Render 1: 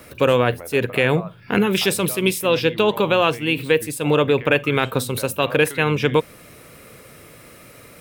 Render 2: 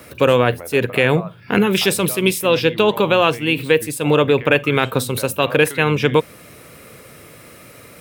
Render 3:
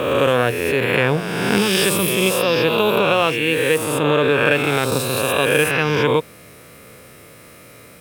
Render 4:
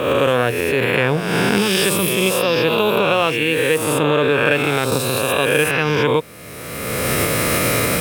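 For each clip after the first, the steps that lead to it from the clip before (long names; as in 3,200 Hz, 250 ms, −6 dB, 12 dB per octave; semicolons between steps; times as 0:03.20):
high-pass filter 52 Hz; level +2.5 dB
peak hold with a rise ahead of every peak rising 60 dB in 1.77 s; level −4.5 dB
camcorder AGC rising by 27 dB per second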